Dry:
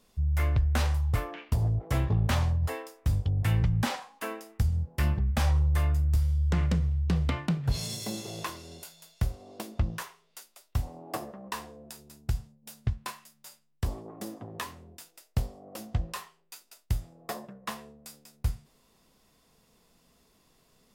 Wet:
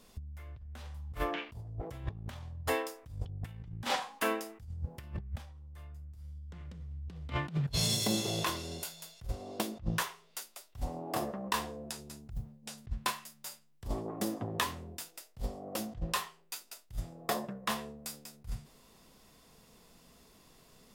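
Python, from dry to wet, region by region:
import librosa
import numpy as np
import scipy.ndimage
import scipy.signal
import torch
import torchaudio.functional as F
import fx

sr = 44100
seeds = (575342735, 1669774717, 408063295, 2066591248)

y = fx.chain(x, sr, fx.env_lowpass_down(base_hz=570.0, full_db=-26.5),
    fx.mod_noise(seeds[0], snr_db=35), at=(11.9, 12.78))
y = fx.dynamic_eq(y, sr, hz=3400.0, q=3.5, threshold_db=-55.0, ratio=4.0, max_db=4)
y = fx.over_compress(y, sr, threshold_db=-33.0, ratio=-0.5)
y = y * 10.0 ** (-2.0 / 20.0)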